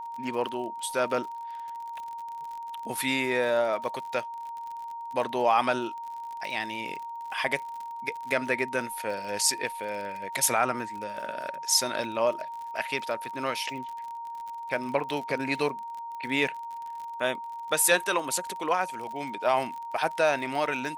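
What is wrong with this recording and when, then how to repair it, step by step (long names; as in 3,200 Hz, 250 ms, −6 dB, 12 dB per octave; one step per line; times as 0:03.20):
surface crackle 47 per second −36 dBFS
whistle 930 Hz −35 dBFS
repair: click removal
notch filter 930 Hz, Q 30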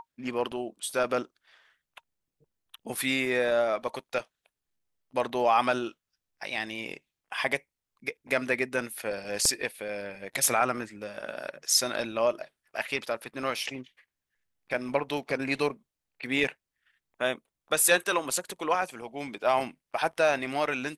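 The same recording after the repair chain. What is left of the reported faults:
none of them is left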